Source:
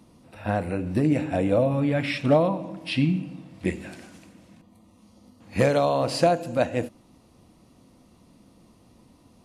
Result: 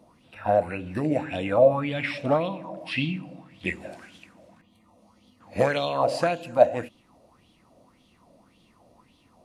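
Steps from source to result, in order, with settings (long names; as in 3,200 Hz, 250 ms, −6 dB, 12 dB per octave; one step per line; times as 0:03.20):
auto-filter bell 1.8 Hz 570–3,400 Hz +18 dB
level −6.5 dB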